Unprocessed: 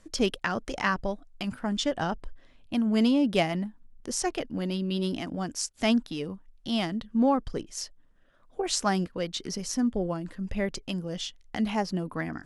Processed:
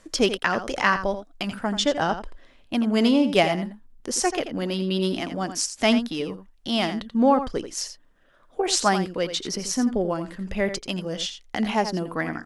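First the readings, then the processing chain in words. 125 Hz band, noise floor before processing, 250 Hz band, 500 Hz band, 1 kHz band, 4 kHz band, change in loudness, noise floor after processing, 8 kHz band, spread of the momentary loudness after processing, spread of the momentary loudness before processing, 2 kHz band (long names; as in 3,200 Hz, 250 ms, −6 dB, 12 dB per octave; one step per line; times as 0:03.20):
+2.0 dB, −58 dBFS, +3.0 dB, +6.5 dB, +7.0 dB, +6.5 dB, +5.0 dB, −56 dBFS, +6.0 dB, 11 LU, 11 LU, +7.0 dB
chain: bass and treble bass −7 dB, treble −1 dB
single-tap delay 85 ms −10.5 dB
level +6.5 dB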